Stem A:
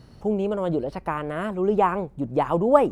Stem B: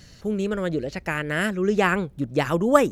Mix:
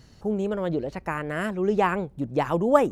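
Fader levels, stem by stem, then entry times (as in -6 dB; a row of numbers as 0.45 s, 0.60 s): -5.5 dB, -9.5 dB; 0.00 s, 0.00 s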